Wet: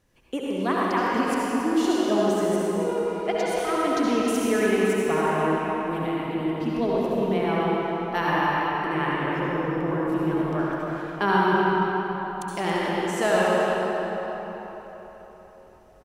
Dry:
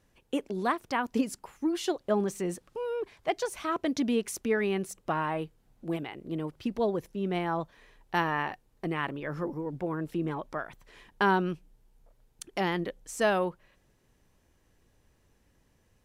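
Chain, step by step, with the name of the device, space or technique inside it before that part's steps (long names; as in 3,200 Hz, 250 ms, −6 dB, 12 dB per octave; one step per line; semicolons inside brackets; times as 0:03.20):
cave (single-tap delay 277 ms −10.5 dB; convolution reverb RT60 4.2 s, pre-delay 62 ms, DRR −6.5 dB)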